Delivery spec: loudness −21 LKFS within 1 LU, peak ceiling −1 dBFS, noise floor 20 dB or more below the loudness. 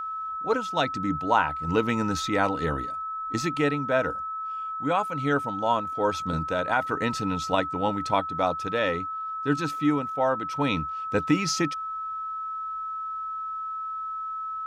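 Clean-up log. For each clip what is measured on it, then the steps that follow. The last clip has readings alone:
interfering tone 1,300 Hz; level of the tone −30 dBFS; integrated loudness −27.0 LKFS; sample peak −8.0 dBFS; target loudness −21.0 LKFS
→ notch filter 1,300 Hz, Q 30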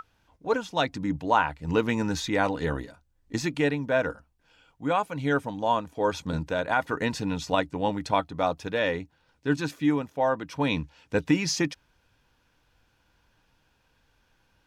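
interfering tone none found; integrated loudness −27.5 LKFS; sample peak −8.5 dBFS; target loudness −21.0 LKFS
→ level +6.5 dB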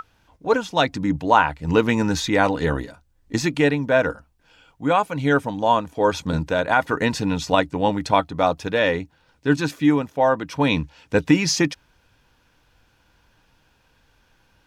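integrated loudness −21.0 LKFS; sample peak −2.0 dBFS; background noise floor −62 dBFS

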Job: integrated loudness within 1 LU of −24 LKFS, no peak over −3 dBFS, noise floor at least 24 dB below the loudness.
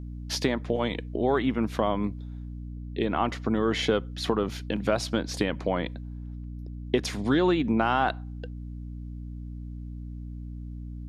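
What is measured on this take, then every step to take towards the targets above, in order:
mains hum 60 Hz; hum harmonics up to 300 Hz; level of the hum −35 dBFS; integrated loudness −27.5 LKFS; sample peak −8.5 dBFS; target loudness −24.0 LKFS
→ hum removal 60 Hz, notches 5
level +3.5 dB

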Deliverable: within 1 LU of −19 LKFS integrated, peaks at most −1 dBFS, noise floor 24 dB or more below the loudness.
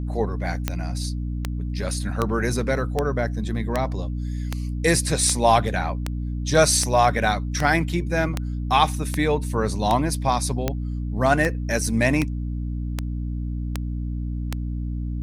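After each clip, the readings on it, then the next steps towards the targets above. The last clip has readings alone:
number of clicks 19; mains hum 60 Hz; hum harmonics up to 300 Hz; level of the hum −25 dBFS; integrated loudness −23.5 LKFS; sample peak −3.0 dBFS; target loudness −19.0 LKFS
→ click removal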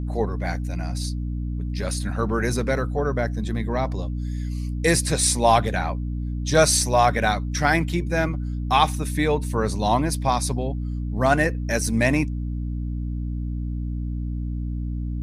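number of clicks 0; mains hum 60 Hz; hum harmonics up to 300 Hz; level of the hum −25 dBFS
→ hum removal 60 Hz, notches 5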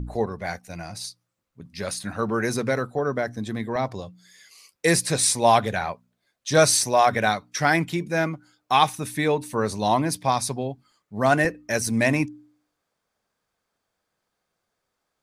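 mains hum none found; integrated loudness −23.0 LKFS; sample peak −3.0 dBFS; target loudness −19.0 LKFS
→ level +4 dB
brickwall limiter −1 dBFS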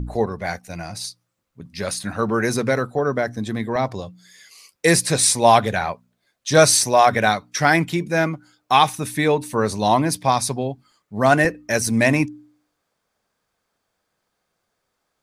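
integrated loudness −19.5 LKFS; sample peak −1.0 dBFS; background noise floor −76 dBFS

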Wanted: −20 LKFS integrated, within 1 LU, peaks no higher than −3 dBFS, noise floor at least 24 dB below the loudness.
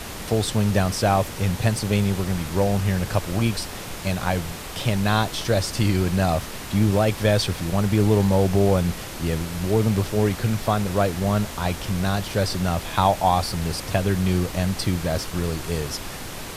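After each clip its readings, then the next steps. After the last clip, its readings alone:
background noise floor −34 dBFS; target noise floor −47 dBFS; integrated loudness −23.0 LKFS; sample peak −4.5 dBFS; target loudness −20.0 LKFS
→ noise reduction from a noise print 13 dB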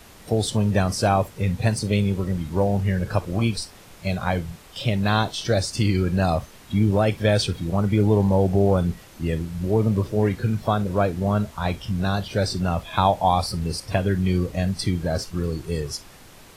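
background noise floor −47 dBFS; integrated loudness −23.0 LKFS; sample peak −5.0 dBFS; target loudness −20.0 LKFS
→ level +3 dB
brickwall limiter −3 dBFS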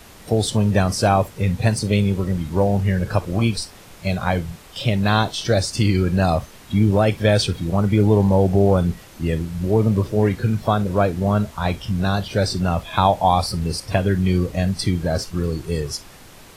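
integrated loudness −20.0 LKFS; sample peak −3.0 dBFS; background noise floor −44 dBFS

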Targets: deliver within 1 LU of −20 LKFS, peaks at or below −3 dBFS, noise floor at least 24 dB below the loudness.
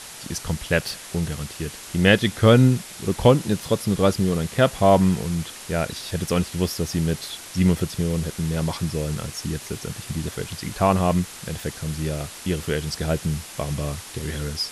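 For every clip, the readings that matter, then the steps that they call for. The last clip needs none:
background noise floor −40 dBFS; target noise floor −48 dBFS; integrated loudness −23.5 LKFS; sample peak −3.5 dBFS; target loudness −20.0 LKFS
→ noise reduction from a noise print 8 dB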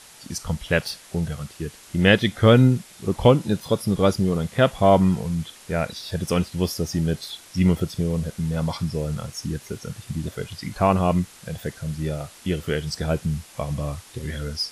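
background noise floor −47 dBFS; target noise floor −48 dBFS
→ noise reduction from a noise print 6 dB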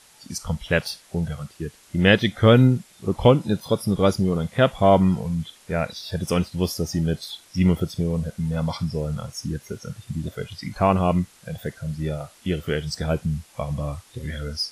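background noise floor −53 dBFS; integrated loudness −23.5 LKFS; sample peak −4.0 dBFS; target loudness −20.0 LKFS
→ level +3.5 dB
brickwall limiter −3 dBFS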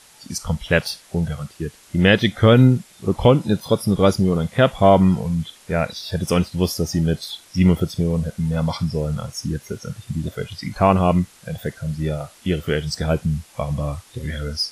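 integrated loudness −20.5 LKFS; sample peak −3.0 dBFS; background noise floor −50 dBFS

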